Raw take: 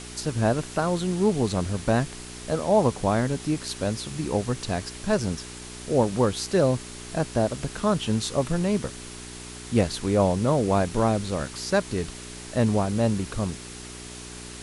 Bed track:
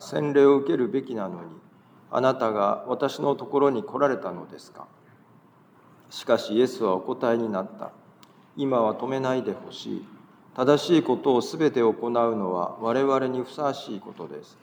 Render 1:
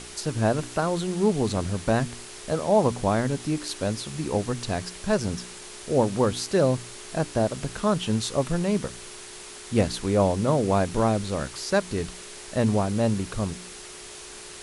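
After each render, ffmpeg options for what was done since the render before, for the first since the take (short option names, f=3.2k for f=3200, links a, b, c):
-af "bandreject=f=60:t=h:w=4,bandreject=f=120:t=h:w=4,bandreject=f=180:t=h:w=4,bandreject=f=240:t=h:w=4,bandreject=f=300:t=h:w=4"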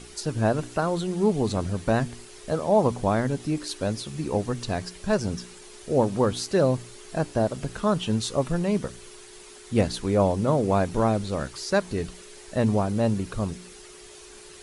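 -af "afftdn=nr=8:nf=-42"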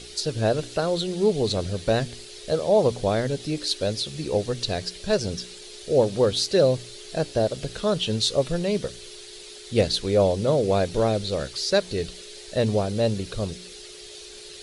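-af "equalizer=f=250:t=o:w=1:g=-5,equalizer=f=500:t=o:w=1:g=7,equalizer=f=1k:t=o:w=1:g=-8,equalizer=f=4k:t=o:w=1:g=11"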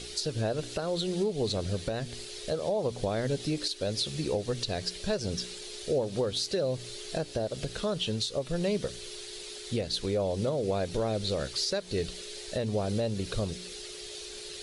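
-af "acompressor=threshold=-24dB:ratio=5,alimiter=limit=-20dB:level=0:latency=1:release=329"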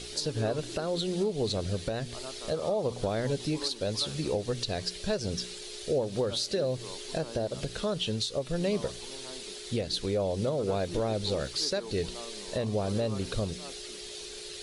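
-filter_complex "[1:a]volume=-22.5dB[a];[0:a][a]amix=inputs=2:normalize=0"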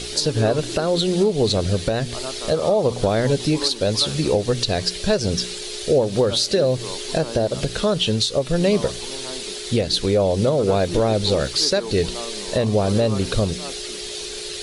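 -af "volume=11dB"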